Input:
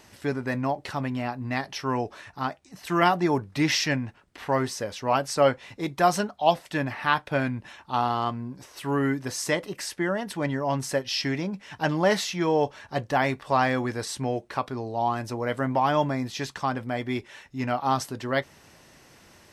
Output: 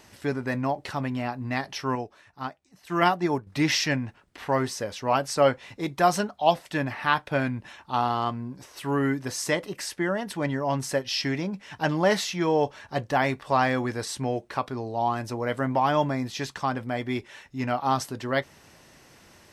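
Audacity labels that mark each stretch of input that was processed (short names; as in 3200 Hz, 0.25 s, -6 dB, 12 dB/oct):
1.950000	3.470000	upward expander, over -39 dBFS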